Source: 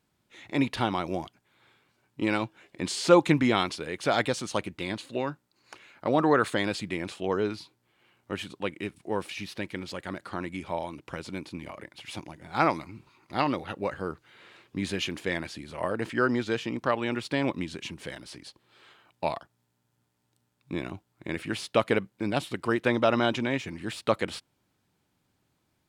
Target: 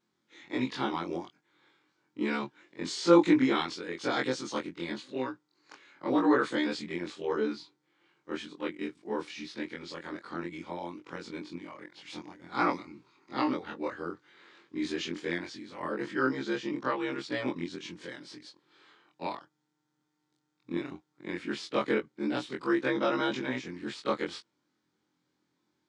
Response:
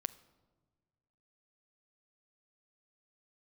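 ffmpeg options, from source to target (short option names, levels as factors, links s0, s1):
-af "afftfilt=real='re':imag='-im':win_size=2048:overlap=0.75,acontrast=36,highpass=200,equalizer=f=310:t=q:w=4:g=5,equalizer=f=660:t=q:w=4:g=-9,equalizer=f=2700:t=q:w=4:g=-6,lowpass=f=6900:w=0.5412,lowpass=f=6900:w=1.3066,volume=0.668"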